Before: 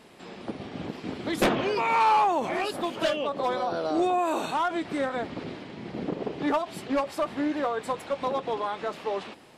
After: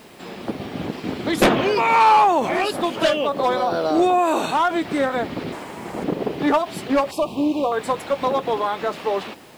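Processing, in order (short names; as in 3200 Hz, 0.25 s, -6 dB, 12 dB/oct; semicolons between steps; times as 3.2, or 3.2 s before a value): 7.11–7.72 elliptic band-stop 1100–2500 Hz; bit-crush 10-bit; 5.52–6.04 graphic EQ 125/250/1000/4000/8000 Hz -6/-4/+7/-6/+11 dB; gain +7.5 dB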